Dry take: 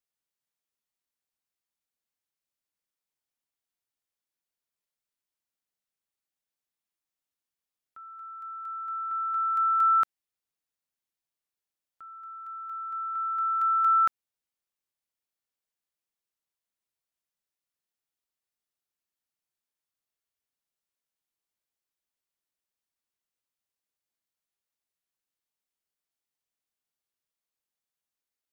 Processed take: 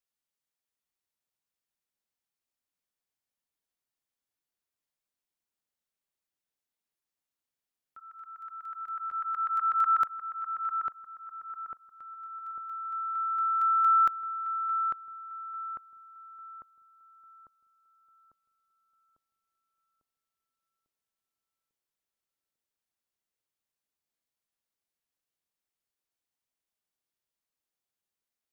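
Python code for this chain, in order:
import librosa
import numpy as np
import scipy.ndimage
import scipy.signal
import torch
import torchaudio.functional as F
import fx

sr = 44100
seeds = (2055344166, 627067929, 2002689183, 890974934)

y = fx.filter_lfo_notch(x, sr, shape='saw_down', hz=8.1, low_hz=540.0, high_hz=1500.0, q=2.0, at=(7.99, 10.01))
y = fx.echo_filtered(y, sr, ms=848, feedback_pct=58, hz=1100.0, wet_db=-3)
y = F.gain(torch.from_numpy(y), -1.5).numpy()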